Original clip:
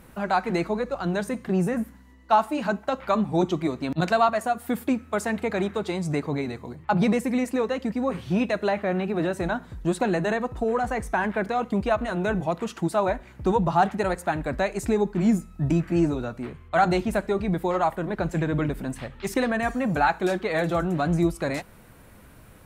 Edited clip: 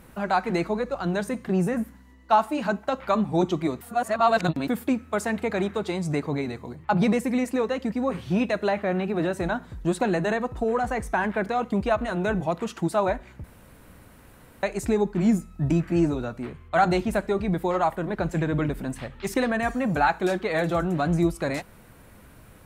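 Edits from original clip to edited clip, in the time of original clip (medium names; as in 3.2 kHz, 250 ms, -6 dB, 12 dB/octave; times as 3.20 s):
3.81–4.68 s: reverse
13.44–14.63 s: room tone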